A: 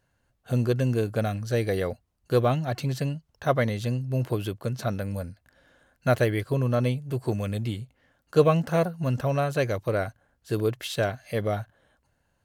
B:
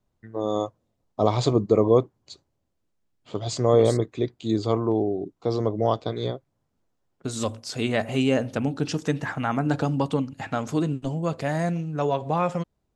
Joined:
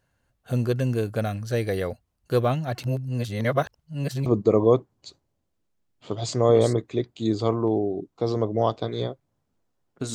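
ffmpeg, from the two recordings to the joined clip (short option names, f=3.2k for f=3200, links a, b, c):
-filter_complex "[0:a]apad=whole_dur=10.14,atrim=end=10.14,asplit=2[a][b];[a]atrim=end=2.832[c];[b]atrim=start=2.828:end=4.262,asetpts=PTS-STARTPTS,areverse[d];[1:a]atrim=start=1.498:end=7.38[e];[c][d]acrossfade=d=0.004:c1=hsin:c2=hsin[f];[f][e]acrossfade=d=0.004:c1=hsin:c2=hsin"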